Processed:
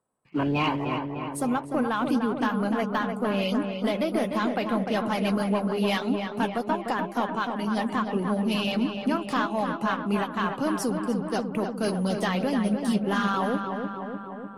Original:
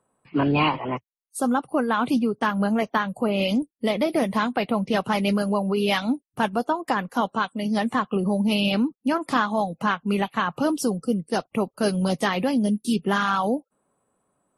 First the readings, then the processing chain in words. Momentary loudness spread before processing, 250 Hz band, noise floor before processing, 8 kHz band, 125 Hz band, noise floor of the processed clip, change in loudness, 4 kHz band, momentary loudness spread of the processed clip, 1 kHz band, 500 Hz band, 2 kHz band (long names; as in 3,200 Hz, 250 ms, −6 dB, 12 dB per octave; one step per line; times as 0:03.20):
4 LU, −2.5 dB, −80 dBFS, −4.0 dB, −2.5 dB, −38 dBFS, −3.0 dB, −4.0 dB, 4 LU, −3.0 dB, −2.5 dB, −3.5 dB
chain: leveller curve on the samples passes 1
feedback echo with a low-pass in the loop 299 ms, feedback 69%, low-pass 2,500 Hz, level −5.5 dB
level −7.5 dB